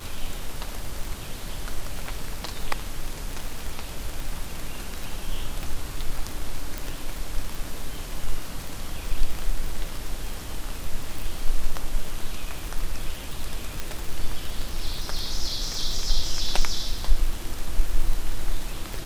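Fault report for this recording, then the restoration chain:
crackle 49/s -27 dBFS
6.78 pop
13.8 pop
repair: de-click

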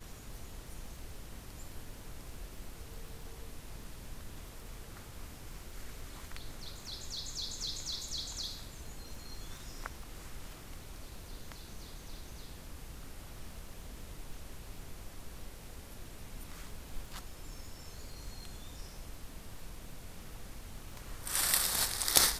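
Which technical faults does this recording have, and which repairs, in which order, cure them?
crackle 23/s -46 dBFS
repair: de-click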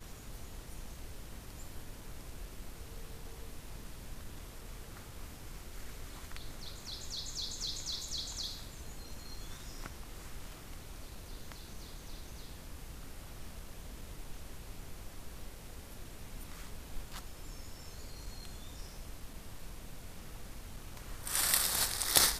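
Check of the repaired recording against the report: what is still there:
none

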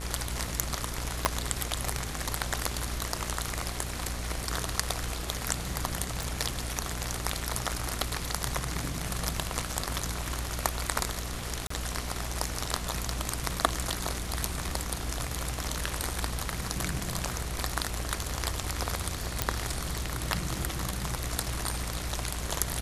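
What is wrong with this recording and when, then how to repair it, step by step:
buzz 60 Hz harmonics 27 -37 dBFS
1.25 pop -6 dBFS
6.23 pop
11.67–11.7 gap 34 ms
19.42 pop -7 dBFS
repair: de-click; de-hum 60 Hz, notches 27; interpolate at 11.67, 34 ms

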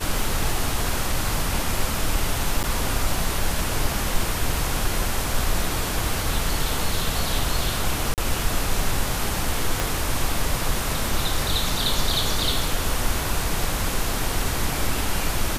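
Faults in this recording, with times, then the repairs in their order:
2.63–2.64 gap 8.4 ms
8.14–8.18 gap 38 ms
9.8 pop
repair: de-click; interpolate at 2.63, 8.4 ms; interpolate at 8.14, 38 ms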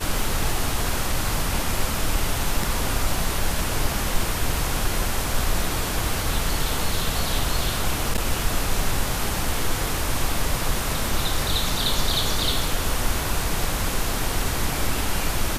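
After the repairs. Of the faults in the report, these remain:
9.8 pop

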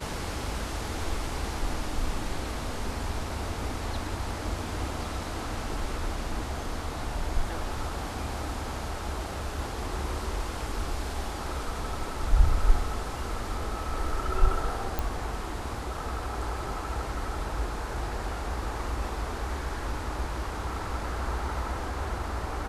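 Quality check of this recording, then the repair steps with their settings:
14.99 pop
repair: de-click

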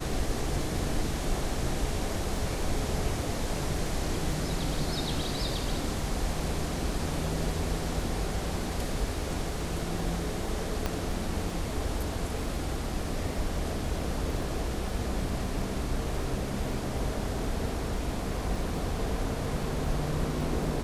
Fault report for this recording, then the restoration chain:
crackle 24/s -38 dBFS
10.86 pop -15 dBFS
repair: de-click

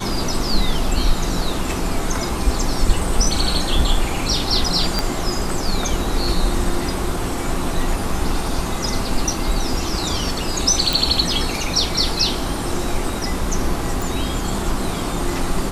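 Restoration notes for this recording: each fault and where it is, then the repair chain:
4.99 pop -4 dBFS
10.93 pop
14.02 pop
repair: de-click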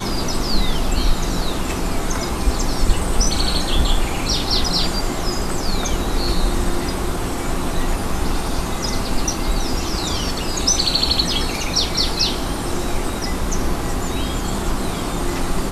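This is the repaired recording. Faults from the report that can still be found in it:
4.99 pop

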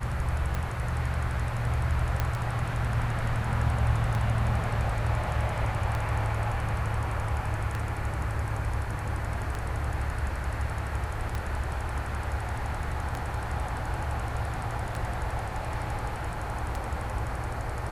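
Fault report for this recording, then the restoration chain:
tick 33 1/3 rpm -18 dBFS
2.2 pop -13 dBFS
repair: de-click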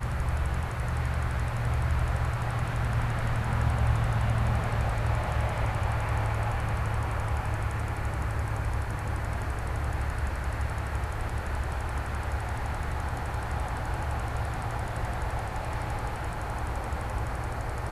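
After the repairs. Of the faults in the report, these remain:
2.2 pop

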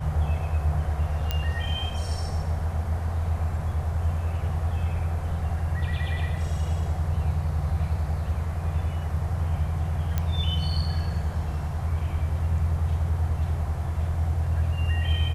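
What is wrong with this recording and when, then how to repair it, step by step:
1.31 pop -12 dBFS
10.18 pop -13 dBFS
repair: de-click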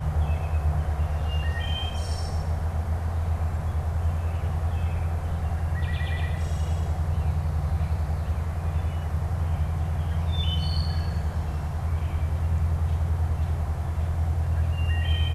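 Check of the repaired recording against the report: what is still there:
none

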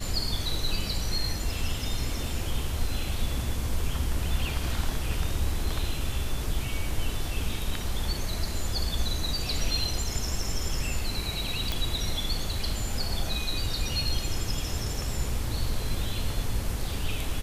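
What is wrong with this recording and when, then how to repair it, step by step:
11.72 pop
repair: de-click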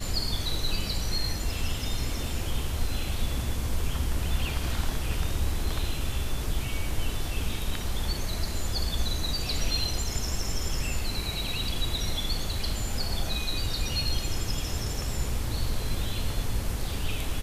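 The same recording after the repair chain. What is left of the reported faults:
none

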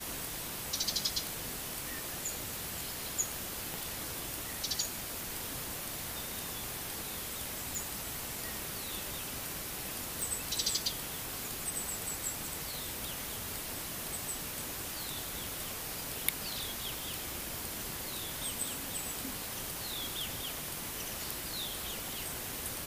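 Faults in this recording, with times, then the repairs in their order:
3.74 pop
7.75 pop
10.22 pop
16.99 pop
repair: de-click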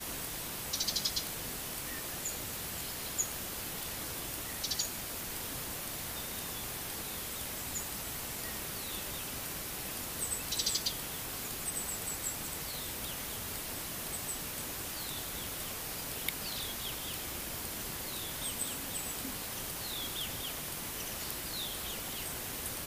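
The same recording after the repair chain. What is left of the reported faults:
none

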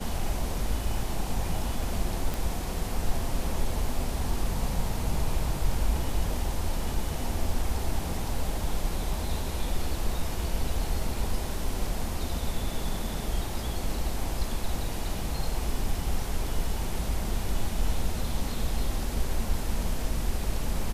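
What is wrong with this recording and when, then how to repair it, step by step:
2.34 pop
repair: de-click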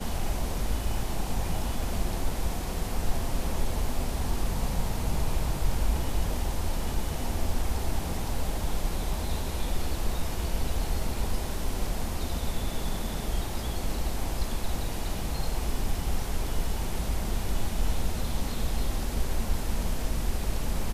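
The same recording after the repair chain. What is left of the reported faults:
none

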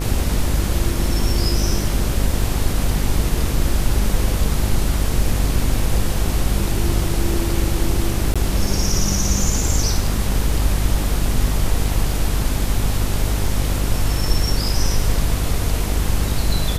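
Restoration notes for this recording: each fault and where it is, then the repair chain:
buzz 50 Hz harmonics 29 -22 dBFS
8.34–8.36 gap 16 ms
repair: de-hum 50 Hz, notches 29; interpolate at 8.34, 16 ms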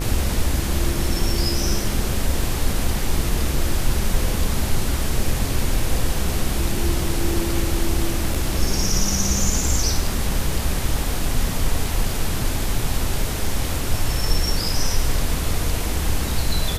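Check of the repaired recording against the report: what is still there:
none

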